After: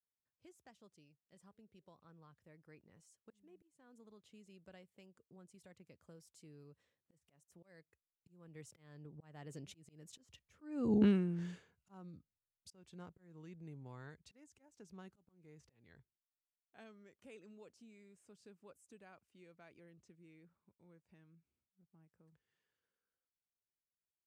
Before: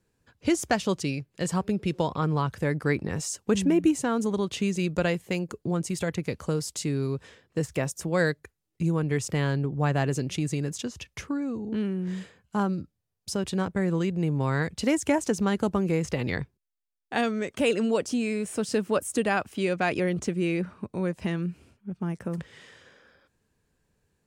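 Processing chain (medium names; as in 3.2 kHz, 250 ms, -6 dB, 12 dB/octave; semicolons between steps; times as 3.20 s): Doppler pass-by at 10.94 s, 21 m/s, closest 1.5 m; slow attack 392 ms; trim +6 dB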